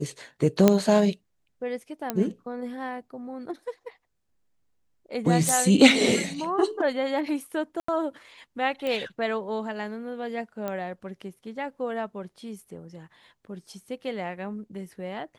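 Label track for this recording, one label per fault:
0.680000	0.680000	pop -4 dBFS
2.100000	2.100000	pop -11 dBFS
5.490000	5.490000	pop
7.800000	7.880000	dropout 84 ms
8.870000	8.870000	pop -18 dBFS
10.680000	10.680000	pop -18 dBFS

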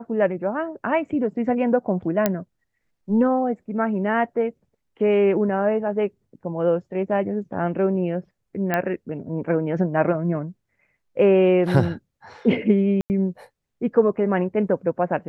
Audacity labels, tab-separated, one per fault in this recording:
2.260000	2.260000	pop -5 dBFS
8.740000	8.740000	pop -9 dBFS
13.010000	13.100000	dropout 89 ms

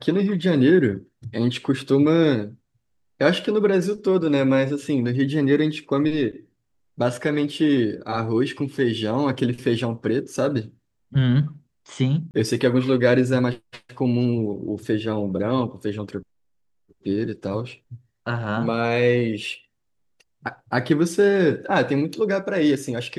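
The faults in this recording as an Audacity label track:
12.310000	12.340000	dropout 29 ms

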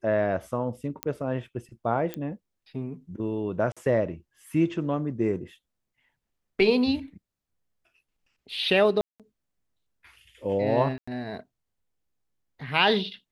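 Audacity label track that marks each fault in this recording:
1.030000	1.030000	pop -12 dBFS
2.140000	2.140000	pop -17 dBFS
3.720000	3.770000	dropout 46 ms
9.010000	9.200000	dropout 187 ms
10.980000	11.070000	dropout 95 ms

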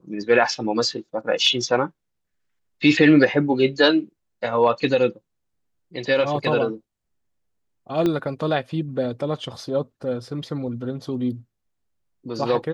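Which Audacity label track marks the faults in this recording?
8.060000	8.060000	pop -11 dBFS

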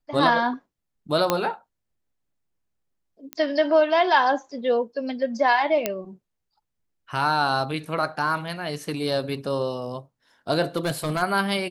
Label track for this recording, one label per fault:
1.300000	1.300000	pop -5 dBFS
3.330000	3.330000	pop -15 dBFS
5.860000	5.860000	pop -7 dBFS
10.760000	11.230000	clipped -20 dBFS

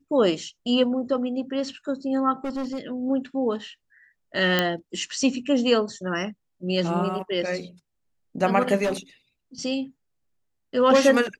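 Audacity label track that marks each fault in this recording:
2.440000	2.810000	clipped -25.5 dBFS
4.590000	4.590000	pop -6 dBFS
8.830000	8.930000	clipped -20.5 dBFS

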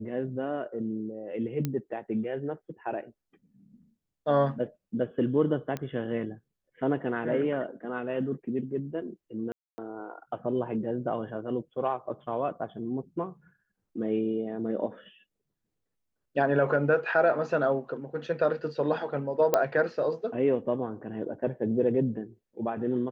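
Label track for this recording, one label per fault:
1.650000	1.650000	pop -16 dBFS
5.770000	5.770000	pop -20 dBFS
9.520000	9.780000	dropout 260 ms
19.540000	19.540000	pop -9 dBFS

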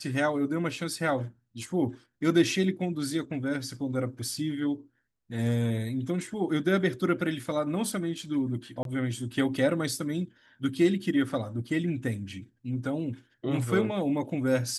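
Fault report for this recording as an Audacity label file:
8.830000	8.850000	dropout 22 ms

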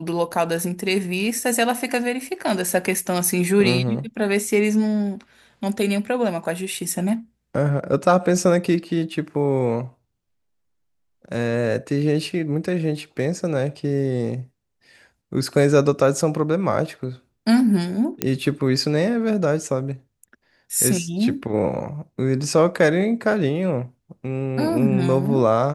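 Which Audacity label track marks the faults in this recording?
18.220000	18.220000	pop -5 dBFS

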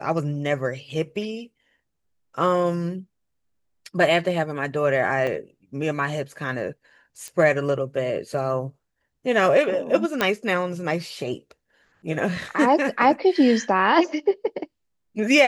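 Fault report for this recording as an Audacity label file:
5.270000	5.270000	dropout 4.1 ms
7.280000	7.280000	pop -21 dBFS
10.210000	10.210000	pop -7 dBFS

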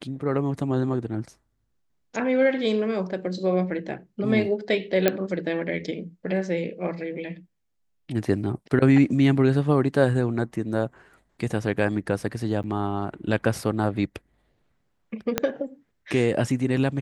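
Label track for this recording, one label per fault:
5.080000	5.080000	pop -5 dBFS
12.630000	12.640000	dropout 8.6 ms
15.380000	15.380000	pop -6 dBFS

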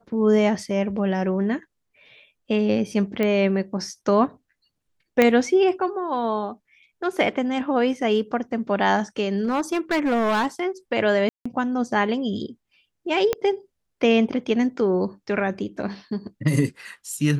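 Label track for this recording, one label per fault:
3.230000	3.230000	pop -12 dBFS
5.220000	5.220000	pop -5 dBFS
9.410000	10.460000	clipped -18 dBFS
11.290000	11.460000	dropout 165 ms
13.330000	13.330000	pop -9 dBFS

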